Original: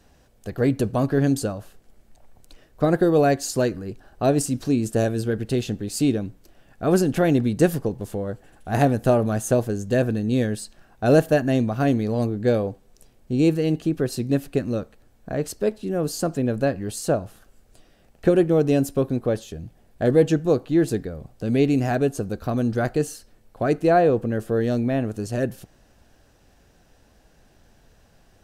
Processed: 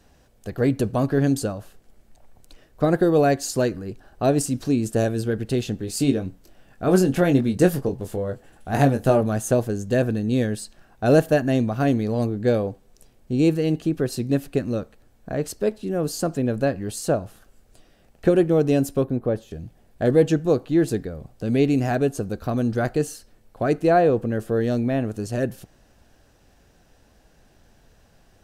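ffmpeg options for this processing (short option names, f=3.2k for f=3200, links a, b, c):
-filter_complex "[0:a]asettb=1/sr,asplit=3[a][b][c];[a]atrim=end=5.784[d];[b]atrim=start=5.78:end=9.21,asetpts=PTS-STARTPTS,afade=t=in:d=0.004:c=qsin,afade=t=out:st=3.426:d=0.004:c=qsin,asplit=2[e][f];[f]adelay=22,volume=-7dB[g];[e][g]amix=inputs=2:normalize=0,atrim=end_sample=151263[h];[c]atrim=start=9.206[i];[d][h]acrossfade=d=0.004:c1=hsin:c2=qsin[j];[j][i]acrossfade=d=0.004:c1=qsin:c2=hsin,asettb=1/sr,asplit=3[k][l][m];[k]atrim=end=19.044[n];[l]atrim=start=19.04:end=19.51,asetpts=PTS-STARTPTS,afade=t=in:d=0.004:c=qsin,afade=t=out:st=0.466:d=0.004:c=qsin,equalizer=f=6.7k:w=0.35:g=-11.5[o];[m]atrim=start=19.506[p];[n][o]acrossfade=d=0.004:c1=hsin:c2=qsin[q];[q][p]acrossfade=d=0.004:c1=qsin:c2=hsin"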